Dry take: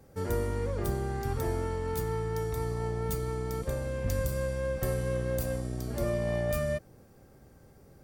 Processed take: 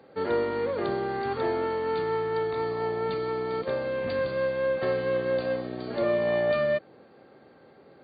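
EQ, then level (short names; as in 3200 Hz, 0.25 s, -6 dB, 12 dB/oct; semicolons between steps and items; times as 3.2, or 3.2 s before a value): HPF 300 Hz 12 dB/oct; brick-wall FIR low-pass 4700 Hz; +7.5 dB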